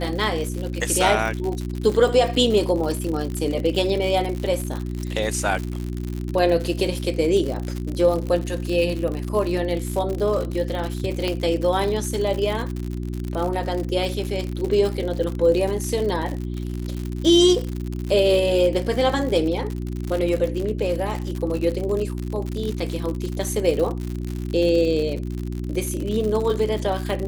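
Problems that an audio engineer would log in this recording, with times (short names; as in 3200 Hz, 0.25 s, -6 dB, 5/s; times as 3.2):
crackle 89/s -26 dBFS
hum 60 Hz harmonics 6 -28 dBFS
11.28 pop -12 dBFS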